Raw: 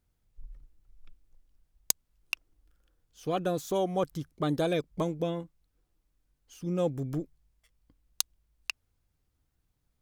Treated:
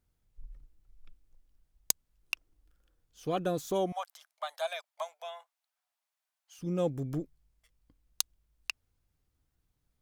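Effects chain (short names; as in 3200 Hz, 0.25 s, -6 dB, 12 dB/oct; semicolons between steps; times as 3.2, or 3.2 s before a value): 3.92–6.59 Chebyshev high-pass 630 Hz, order 6; gain -1.5 dB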